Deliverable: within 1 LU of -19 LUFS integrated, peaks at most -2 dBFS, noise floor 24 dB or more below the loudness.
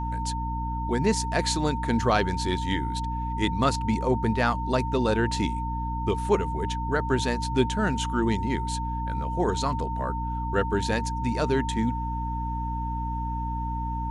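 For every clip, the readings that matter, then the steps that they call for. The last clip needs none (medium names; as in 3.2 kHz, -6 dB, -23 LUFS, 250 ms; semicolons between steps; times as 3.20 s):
hum 60 Hz; highest harmonic 300 Hz; hum level -29 dBFS; steady tone 910 Hz; tone level -31 dBFS; loudness -27.0 LUFS; peak level -9.0 dBFS; loudness target -19.0 LUFS
-> hum notches 60/120/180/240/300 Hz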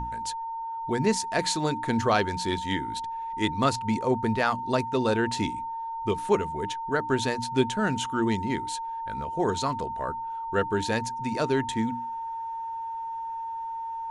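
hum not found; steady tone 910 Hz; tone level -31 dBFS
-> band-stop 910 Hz, Q 30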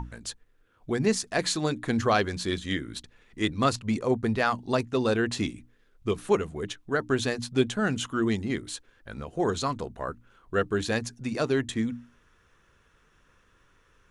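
steady tone not found; loudness -28.5 LUFS; peak level -9.0 dBFS; loudness target -19.0 LUFS
-> trim +9.5 dB; peak limiter -2 dBFS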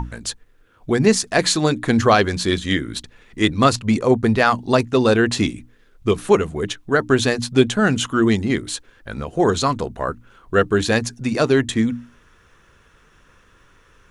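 loudness -19.0 LUFS; peak level -2.0 dBFS; noise floor -54 dBFS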